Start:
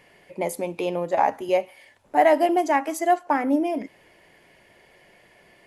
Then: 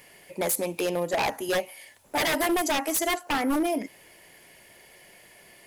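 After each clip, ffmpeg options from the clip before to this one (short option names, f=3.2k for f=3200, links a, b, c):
-af "aemphasis=mode=production:type=75fm,aeval=exprs='0.106*(abs(mod(val(0)/0.106+3,4)-2)-1)':c=same"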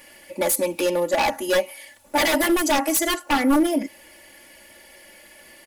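-af "aecho=1:1:3.5:0.95,volume=2dB"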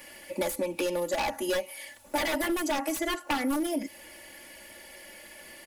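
-filter_complex "[0:a]acrossover=split=100|3300[a][b][c];[a]acompressor=threshold=-43dB:ratio=4[d];[b]acompressor=threshold=-28dB:ratio=4[e];[c]acompressor=threshold=-39dB:ratio=4[f];[d][e][f]amix=inputs=3:normalize=0"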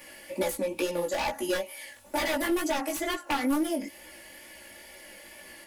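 -af "flanger=delay=15.5:depth=5.4:speed=2.2,volume=3dB"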